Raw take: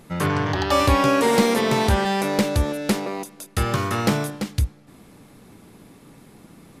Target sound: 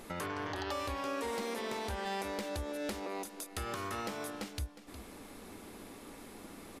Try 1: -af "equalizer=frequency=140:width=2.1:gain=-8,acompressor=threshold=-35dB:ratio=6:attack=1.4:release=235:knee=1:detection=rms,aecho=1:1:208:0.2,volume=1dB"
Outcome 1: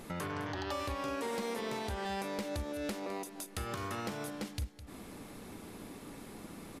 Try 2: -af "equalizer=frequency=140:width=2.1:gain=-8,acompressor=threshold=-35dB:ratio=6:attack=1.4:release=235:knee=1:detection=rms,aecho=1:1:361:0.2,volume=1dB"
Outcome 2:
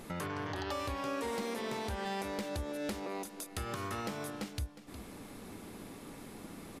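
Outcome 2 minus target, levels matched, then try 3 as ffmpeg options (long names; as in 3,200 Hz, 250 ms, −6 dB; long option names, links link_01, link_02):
125 Hz band +3.0 dB
-af "equalizer=frequency=140:width=2.1:gain=-19.5,acompressor=threshold=-35dB:ratio=6:attack=1.4:release=235:knee=1:detection=rms,aecho=1:1:361:0.2,volume=1dB"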